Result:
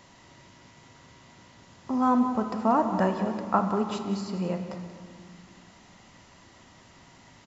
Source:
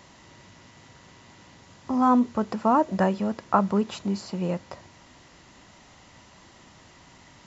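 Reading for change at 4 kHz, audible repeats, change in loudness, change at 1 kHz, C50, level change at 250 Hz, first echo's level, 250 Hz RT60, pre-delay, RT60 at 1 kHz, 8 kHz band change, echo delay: -2.0 dB, 1, -2.0 dB, -2.0 dB, 6.5 dB, -2.0 dB, -12.5 dB, 3.1 s, 3 ms, 2.2 s, no reading, 184 ms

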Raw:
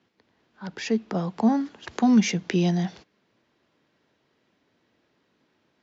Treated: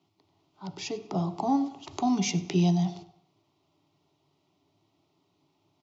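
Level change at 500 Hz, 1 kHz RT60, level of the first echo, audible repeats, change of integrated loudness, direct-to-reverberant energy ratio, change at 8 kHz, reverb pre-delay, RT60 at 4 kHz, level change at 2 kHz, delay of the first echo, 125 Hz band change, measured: -4.5 dB, 0.65 s, -20.0 dB, 2, -4.0 dB, 9.5 dB, no reading, 3 ms, 0.65 s, -8.5 dB, 96 ms, -0.5 dB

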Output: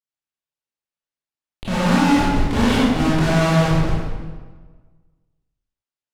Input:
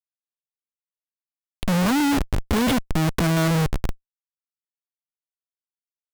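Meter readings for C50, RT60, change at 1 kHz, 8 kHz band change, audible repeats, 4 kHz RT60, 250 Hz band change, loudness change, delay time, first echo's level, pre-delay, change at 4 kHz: -3.0 dB, 1.4 s, +6.0 dB, -1.0 dB, no echo, 1.0 s, +4.0 dB, +4.0 dB, no echo, no echo, 19 ms, +3.5 dB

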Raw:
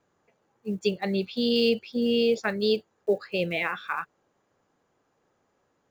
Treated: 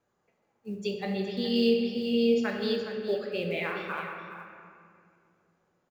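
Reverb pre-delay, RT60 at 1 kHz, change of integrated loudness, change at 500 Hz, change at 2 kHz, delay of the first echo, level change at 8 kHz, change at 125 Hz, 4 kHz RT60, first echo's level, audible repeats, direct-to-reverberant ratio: 5 ms, 2.1 s, -2.5 dB, -2.5 dB, -4.0 dB, 417 ms, no reading, -2.5 dB, 1.4 s, -11.0 dB, 1, 0.5 dB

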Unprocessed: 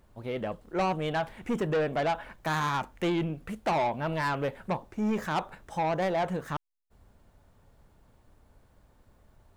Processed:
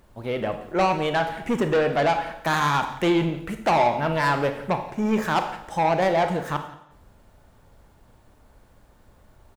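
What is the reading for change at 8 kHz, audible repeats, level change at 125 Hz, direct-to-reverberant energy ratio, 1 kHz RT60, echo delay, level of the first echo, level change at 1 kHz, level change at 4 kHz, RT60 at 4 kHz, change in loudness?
+7.5 dB, 1, +5.0 dB, 7.0 dB, 0.75 s, 174 ms, -20.0 dB, +8.0 dB, +8.0 dB, 0.70 s, +7.0 dB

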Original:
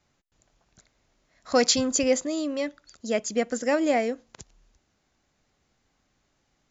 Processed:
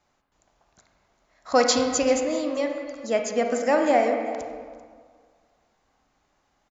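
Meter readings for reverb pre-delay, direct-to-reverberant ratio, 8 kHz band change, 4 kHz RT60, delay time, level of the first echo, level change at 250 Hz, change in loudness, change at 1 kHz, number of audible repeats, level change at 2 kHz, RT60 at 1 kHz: 32 ms, 3.0 dB, no reading, 1.2 s, 390 ms, -20.0 dB, 0.0 dB, +1.5 dB, +6.5 dB, 1, +2.0 dB, 1.9 s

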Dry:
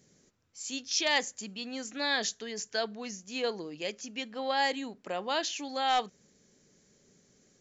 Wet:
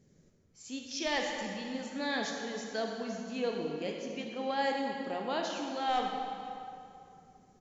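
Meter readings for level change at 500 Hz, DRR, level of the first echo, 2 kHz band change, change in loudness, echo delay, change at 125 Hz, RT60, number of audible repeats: +0.5 dB, 1.0 dB, -21.0 dB, -4.0 dB, -3.0 dB, 502 ms, +4.0 dB, 2.6 s, 1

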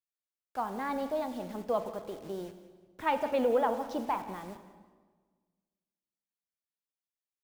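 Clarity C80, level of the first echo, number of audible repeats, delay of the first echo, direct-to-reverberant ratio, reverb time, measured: 11.0 dB, -17.0 dB, 2, 181 ms, 9.5 dB, 1.5 s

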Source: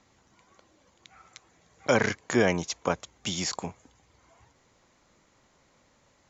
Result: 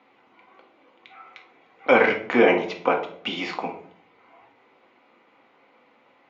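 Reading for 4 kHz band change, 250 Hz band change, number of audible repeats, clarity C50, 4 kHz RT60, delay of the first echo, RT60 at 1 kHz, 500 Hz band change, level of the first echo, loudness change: +1.5 dB, +4.0 dB, no echo, 9.0 dB, 0.40 s, no echo, 0.50 s, +7.5 dB, no echo, +6.0 dB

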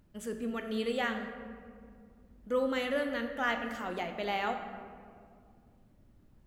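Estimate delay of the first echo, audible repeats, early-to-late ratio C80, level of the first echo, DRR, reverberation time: no echo, no echo, 8.5 dB, no echo, 5.0 dB, 2.2 s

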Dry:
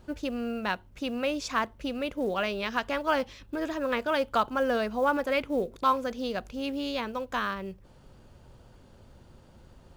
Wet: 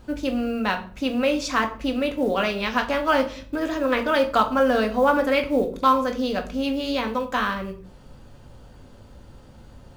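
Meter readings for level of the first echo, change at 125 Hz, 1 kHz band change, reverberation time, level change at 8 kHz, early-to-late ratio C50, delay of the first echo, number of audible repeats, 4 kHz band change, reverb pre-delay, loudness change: no echo, +7.5 dB, +6.5 dB, 0.50 s, no reading, 13.0 dB, no echo, no echo, +6.5 dB, 4 ms, +7.0 dB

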